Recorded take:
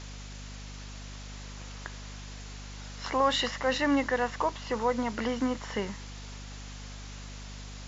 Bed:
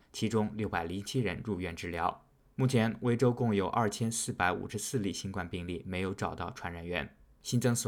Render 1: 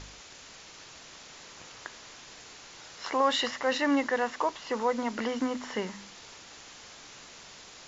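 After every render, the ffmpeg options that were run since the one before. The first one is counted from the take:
-af "bandreject=f=50:t=h:w=4,bandreject=f=100:t=h:w=4,bandreject=f=150:t=h:w=4,bandreject=f=200:t=h:w=4,bandreject=f=250:t=h:w=4"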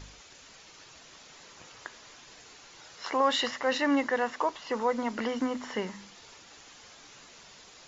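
-af "afftdn=nr=6:nf=-50"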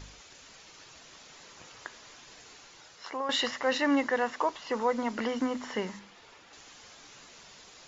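-filter_complex "[0:a]asettb=1/sr,asplit=3[s0][s1][s2];[s0]atrim=end=5.994[s3];[s1]atrim=start=5.99:end=6.53,asetpts=PTS-STARTPTS,afade=t=in:d=0.004:c=qsin,afade=t=out:st=0.536:d=0.004:c=qsin,bass=f=250:g=-4,treble=f=4000:g=-10[s4];[s2]atrim=start=6.526[s5];[s3][s4]acrossfade=d=0.004:c1=hsin:c2=qsin[s6];[s6][s5]acrossfade=d=0.004:c1=qsin:c2=hsin,asplit=2[s7][s8];[s7]atrim=end=3.29,asetpts=PTS-STARTPTS,afade=t=out:st=2.57:d=0.72:silence=0.298538[s9];[s8]atrim=start=3.29,asetpts=PTS-STARTPTS,afade=t=in:d=0.004:c=hsin:silence=0.298538[s10];[s9][s10]concat=n=2:v=0:a=1"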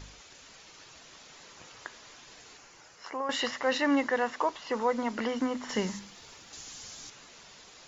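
-filter_complex "[0:a]asettb=1/sr,asplit=3[s0][s1][s2];[s0]atrim=end=2.574[s3];[s1]atrim=start=2.57:end=3.41,asetpts=PTS-STARTPTS,afade=t=in:d=0.004:c=qsin,afade=t=out:st=0.836:d=0.004:c=qsin,equalizer=f=3700:t=o:w=0.49:g=-8[s4];[s2]atrim=start=3.406[s5];[s3][s4]acrossfade=d=0.004:c1=hsin:c2=qsin[s6];[s6][s5]acrossfade=d=0.004:c1=qsin:c2=hsin,asettb=1/sr,asplit=3[s7][s8][s9];[s7]atrim=end=5.694[s10];[s8]atrim=start=5.69:end=7.1,asetpts=PTS-STARTPTS,afade=t=in:d=0.004:c=qsin,afade=t=out:st=1.406:d=0.004:c=qsin,bass=f=250:g=8,treble=f=4000:g=12[s11];[s9]atrim=start=7.096[s12];[s10][s11]acrossfade=d=0.004:c1=hsin:c2=qsin[s13];[s13][s12]acrossfade=d=0.004:c1=qsin:c2=hsin"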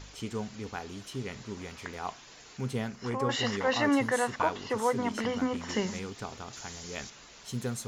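-filter_complex "[1:a]volume=0.531[s0];[0:a][s0]amix=inputs=2:normalize=0"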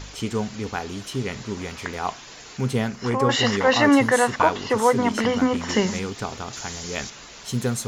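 -af "volume=2.99"

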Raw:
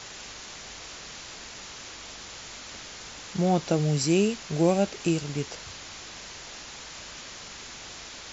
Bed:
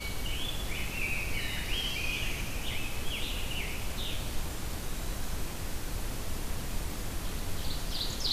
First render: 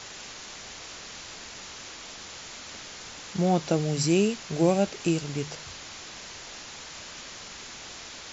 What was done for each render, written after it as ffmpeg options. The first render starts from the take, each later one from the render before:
-af "bandreject=f=50:t=h:w=4,bandreject=f=100:t=h:w=4,bandreject=f=150:t=h:w=4"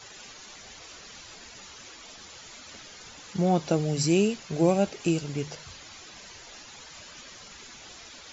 -af "afftdn=nr=10:nf=-43"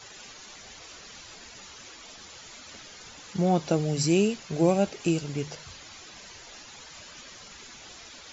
-af anull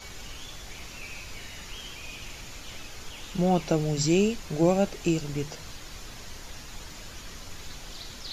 -filter_complex "[1:a]volume=0.355[s0];[0:a][s0]amix=inputs=2:normalize=0"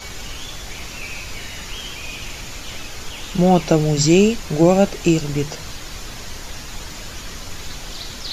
-af "volume=2.99,alimiter=limit=0.794:level=0:latency=1"

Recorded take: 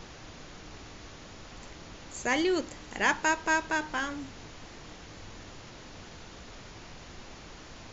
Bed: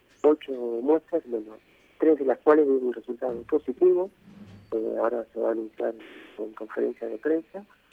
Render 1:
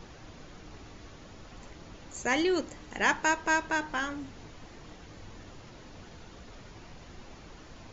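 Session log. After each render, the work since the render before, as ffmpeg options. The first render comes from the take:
-af "afftdn=nr=6:nf=-48"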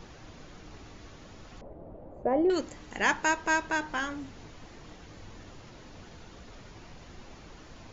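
-filter_complex "[0:a]asettb=1/sr,asplit=3[s0][s1][s2];[s0]atrim=end=1.614[s3];[s1]atrim=start=1.61:end=2.5,asetpts=PTS-STARTPTS,afade=t=in:d=0.004:c=qsin,afade=t=out:st=0.886:d=0.004:c=qsin,lowpass=f=620:t=q:w=2.8[s4];[s2]atrim=start=2.496[s5];[s3][s4]acrossfade=d=0.004:c1=hsin:c2=qsin[s6];[s6][s5]acrossfade=d=0.004:c1=qsin:c2=hsin"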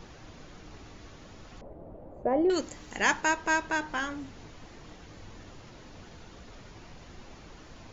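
-filter_complex "[0:a]asettb=1/sr,asplit=3[s0][s1][s2];[s0]atrim=end=2.414[s3];[s1]atrim=start=2.41:end=3.21,asetpts=PTS-STARTPTS,afade=t=in:d=0.004:c=qsin,afade=t=out:st=0.796:d=0.004:c=qsin,highshelf=f=5900:g=8.5[s4];[s2]atrim=start=3.206[s5];[s3][s4]acrossfade=d=0.004:c1=hsin:c2=qsin[s6];[s6][s5]acrossfade=d=0.004:c1=qsin:c2=hsin"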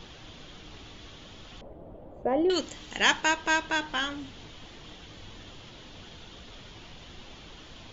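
-af "equalizer=f=3300:t=o:w=0.63:g=12.5"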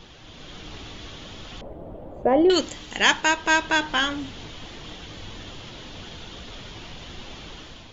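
-af "dynaudnorm=f=120:g=7:m=2.37"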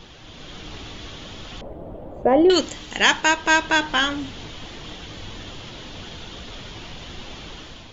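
-af "volume=1.33,alimiter=limit=0.891:level=0:latency=1"

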